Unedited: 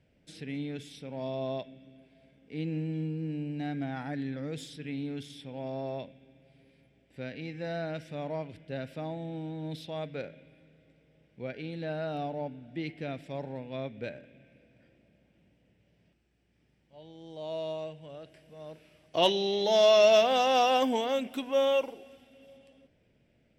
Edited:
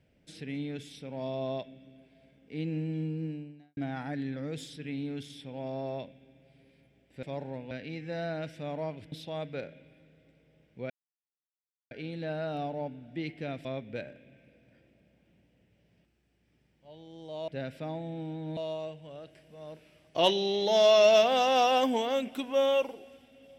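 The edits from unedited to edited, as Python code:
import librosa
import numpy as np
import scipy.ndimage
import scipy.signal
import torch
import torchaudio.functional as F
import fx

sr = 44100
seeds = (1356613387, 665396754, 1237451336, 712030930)

y = fx.edit(x, sr, fx.fade_out_span(start_s=3.25, length_s=0.52, curve='qua'),
    fx.move(start_s=8.64, length_s=1.09, to_s=17.56),
    fx.insert_silence(at_s=11.51, length_s=1.01),
    fx.move(start_s=13.25, length_s=0.48, to_s=7.23), tone=tone)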